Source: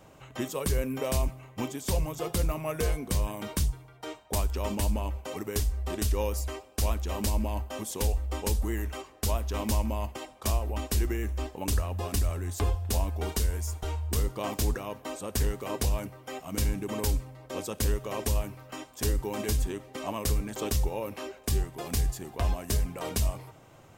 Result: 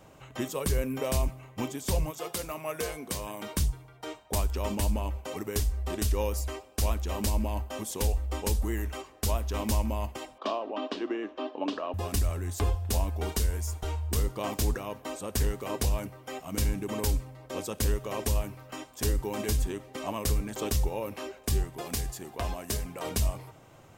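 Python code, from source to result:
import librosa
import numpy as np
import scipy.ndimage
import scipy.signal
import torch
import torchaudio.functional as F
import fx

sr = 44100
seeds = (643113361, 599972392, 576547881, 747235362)

y = fx.highpass(x, sr, hz=fx.line((2.1, 670.0), (3.54, 240.0)), slope=6, at=(2.1, 3.54), fade=0.02)
y = fx.cabinet(y, sr, low_hz=260.0, low_slope=24, high_hz=4000.0, hz=(280.0, 620.0, 1100.0, 2100.0, 3100.0), db=(8, 7, 6, -6, 4), at=(10.38, 11.94))
y = fx.low_shelf(y, sr, hz=140.0, db=-8.5, at=(21.81, 23.05))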